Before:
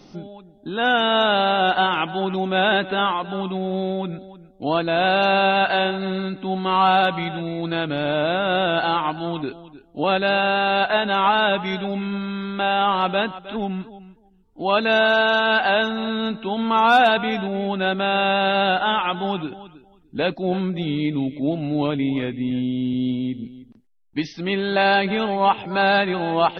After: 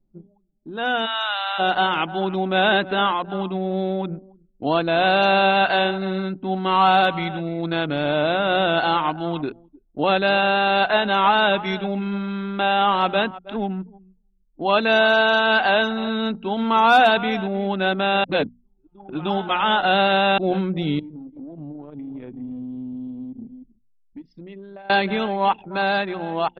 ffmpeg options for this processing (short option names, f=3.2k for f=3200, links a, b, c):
-filter_complex "[0:a]asplit=3[a][b][c];[a]afade=t=out:st=1.05:d=0.02[d];[b]highpass=f=920:w=0.5412,highpass=f=920:w=1.3066,afade=t=in:st=1.05:d=0.02,afade=t=out:st=1.58:d=0.02[e];[c]afade=t=in:st=1.58:d=0.02[f];[d][e][f]amix=inputs=3:normalize=0,asettb=1/sr,asplit=3[g][h][i];[g]atrim=end=20.994[j];[h]atrim=start=20.99:end=24.9,asetpts=PTS-STARTPTS,afade=t=in:d=0.004:c=qsin,afade=t=out:st=3.906:d=0.004:c=qsin,acompressor=threshold=-34dB:ratio=6:attack=3.2:release=140:knee=1:detection=peak[k];[i]atrim=start=24.896[l];[j][k]acrossfade=d=0.004:c1=hsin:c2=qsin[m];[m][l]acrossfade=d=0.004:c1=qsin:c2=hsin,asplit=3[n][o][p];[n]atrim=end=18.242[q];[o]atrim=start=18.238:end=20.382,asetpts=PTS-STARTPTS,areverse[r];[p]atrim=start=20.378[s];[q][r]acrossfade=d=0.004:c1=hsin:c2=hsin[t];[t][s]acrossfade=d=0.004:c1=hsin:c2=hsin,dynaudnorm=f=290:g=11:m=11.5dB,anlmdn=251,bandreject=f=60:t=h:w=6,bandreject=f=120:t=h:w=6,bandreject=f=180:t=h:w=6,bandreject=f=240:t=h:w=6,volume=-4.5dB"